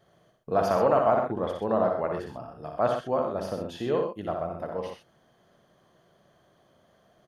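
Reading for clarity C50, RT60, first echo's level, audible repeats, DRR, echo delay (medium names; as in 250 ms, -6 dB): no reverb, no reverb, -5.0 dB, 3, no reverb, 59 ms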